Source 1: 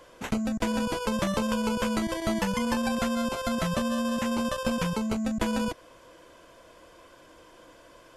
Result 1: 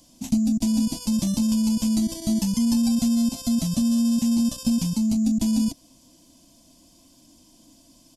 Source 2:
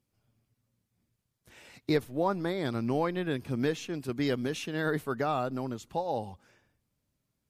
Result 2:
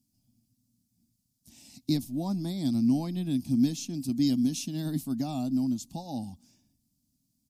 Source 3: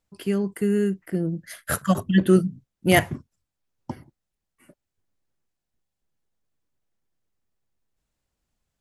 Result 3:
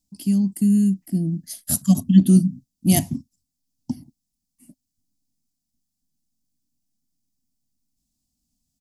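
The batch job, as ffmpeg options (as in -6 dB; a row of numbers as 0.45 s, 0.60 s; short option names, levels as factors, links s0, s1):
-af "firequalizer=gain_entry='entry(110,0);entry(260,11);entry(430,-23);entry(680,-6);entry(1400,-24);entry(2500,-9);entry(4900,8)':delay=0.05:min_phase=1"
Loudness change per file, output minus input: +6.0 LU, +2.0 LU, +3.5 LU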